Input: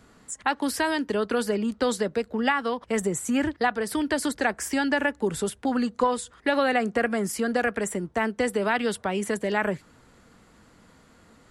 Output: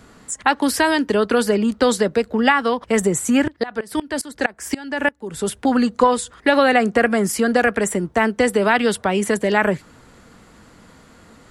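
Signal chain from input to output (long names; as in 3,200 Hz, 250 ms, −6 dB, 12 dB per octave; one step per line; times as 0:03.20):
0:03.42–0:05.49: tremolo with a ramp in dB swelling 6.9 Hz → 2.1 Hz, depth 23 dB
level +8 dB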